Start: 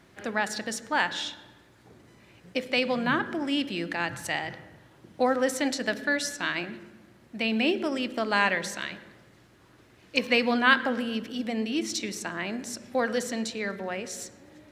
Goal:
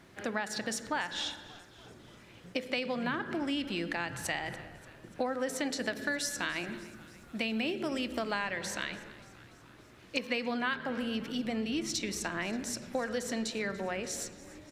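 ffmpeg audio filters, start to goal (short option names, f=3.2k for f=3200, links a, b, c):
-filter_complex "[0:a]asettb=1/sr,asplit=3[a][b][c];[a]atrim=end=5.954[d];[b]atrim=start=5.95:end=8.31,asetpts=PTS-STARTPTS,afade=t=in:d=0.004:c=qsin,afade=t=out:st=2.356:d=0.004:c=qsin,highshelf=f=8k:g=7.5[e];[c]atrim=start=8.306[f];[d][e]acrossfade=d=0.004:c1=hsin:c2=qsin[g];[g][f]acrossfade=d=0.004:c1=qsin:c2=hsin,acompressor=threshold=-30dB:ratio=5,asplit=7[h][i][j][k][l][m][n];[i]adelay=290,afreqshift=-78,volume=-19.5dB[o];[j]adelay=580,afreqshift=-156,volume=-23.2dB[p];[k]adelay=870,afreqshift=-234,volume=-27dB[q];[l]adelay=1160,afreqshift=-312,volume=-30.7dB[r];[m]adelay=1450,afreqshift=-390,volume=-34.5dB[s];[n]adelay=1740,afreqshift=-468,volume=-38.2dB[t];[h][o][p][q][r][s][t]amix=inputs=7:normalize=0"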